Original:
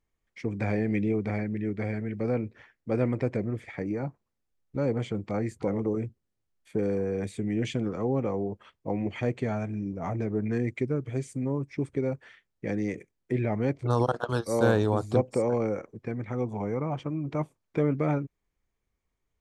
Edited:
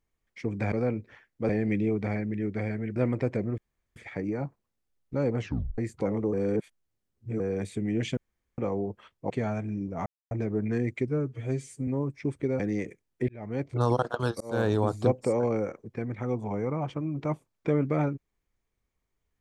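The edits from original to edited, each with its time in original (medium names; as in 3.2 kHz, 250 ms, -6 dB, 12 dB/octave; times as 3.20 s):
2.19–2.96 s: move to 0.72 s
3.58 s: insert room tone 0.38 s
5.01 s: tape stop 0.39 s
5.95–7.02 s: reverse
7.79–8.20 s: room tone
8.92–9.35 s: delete
10.11 s: insert silence 0.25 s
10.88–11.41 s: stretch 1.5×
12.13–12.69 s: delete
13.38–13.85 s: fade in
14.50–14.83 s: fade in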